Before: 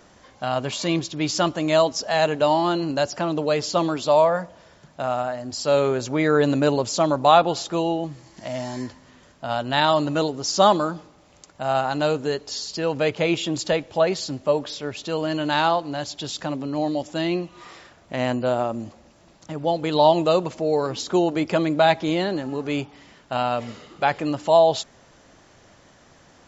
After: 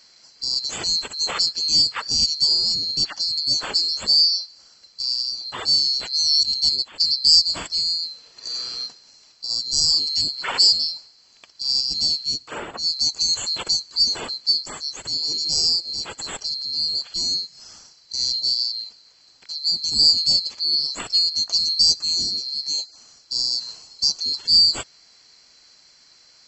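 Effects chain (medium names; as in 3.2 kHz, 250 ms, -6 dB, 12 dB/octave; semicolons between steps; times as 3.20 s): split-band scrambler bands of 4 kHz; 6.43–7.05 s: gate -20 dBFS, range -16 dB; 12.23–12.99 s: three bands expanded up and down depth 70%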